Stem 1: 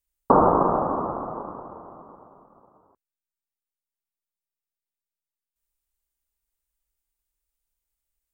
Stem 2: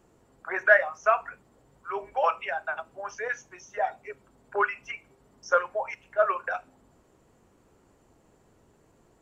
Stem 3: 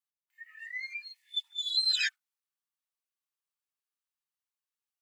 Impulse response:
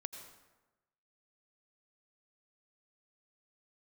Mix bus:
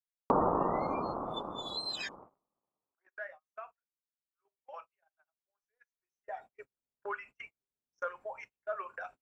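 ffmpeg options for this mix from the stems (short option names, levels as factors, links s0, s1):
-filter_complex "[0:a]aemphasis=mode=reproduction:type=50kf,volume=0.841[s0];[1:a]adelay=2500,volume=0.335,afade=t=in:st=5.86:d=0.73:silence=0.223872[s1];[2:a]volume=0.447[s2];[s0][s1][s2]amix=inputs=3:normalize=0,agate=range=0.0224:threshold=0.00398:ratio=16:detection=peak,acompressor=threshold=0.00891:ratio=1.5"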